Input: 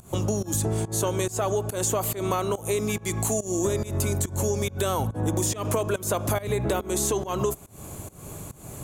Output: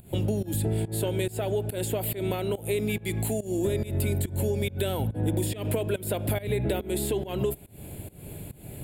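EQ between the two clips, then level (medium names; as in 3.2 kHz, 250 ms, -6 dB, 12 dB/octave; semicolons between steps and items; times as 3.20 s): peaking EQ 1.1 kHz +10 dB 0.24 oct; static phaser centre 2.7 kHz, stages 4; 0.0 dB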